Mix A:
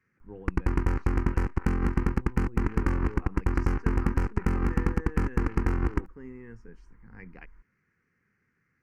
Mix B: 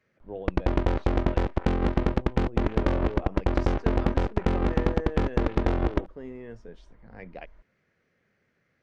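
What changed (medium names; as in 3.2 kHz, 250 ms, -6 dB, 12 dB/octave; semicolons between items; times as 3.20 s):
background: add distance through air 72 m; master: remove static phaser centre 1.5 kHz, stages 4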